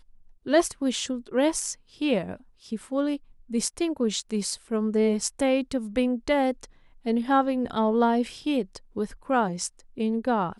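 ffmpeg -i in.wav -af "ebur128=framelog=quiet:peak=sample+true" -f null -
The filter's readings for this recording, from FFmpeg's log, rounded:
Integrated loudness:
  I:         -26.4 LUFS
  Threshold: -36.8 LUFS
Loudness range:
  LRA:         3.0 LU
  Threshold: -46.7 LUFS
  LRA low:   -28.4 LUFS
  LRA high:  -25.4 LUFS
Sample peak:
  Peak:       -8.8 dBFS
True peak:
  Peak:       -8.8 dBFS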